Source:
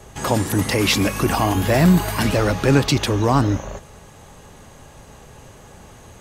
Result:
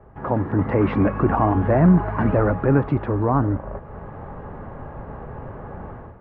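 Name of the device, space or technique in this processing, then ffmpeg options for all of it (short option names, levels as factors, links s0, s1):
action camera in a waterproof case: -af "lowpass=f=1500:w=0.5412,lowpass=f=1500:w=1.3066,dynaudnorm=f=120:g=5:m=5.01,volume=0.562" -ar 48000 -c:a aac -b:a 128k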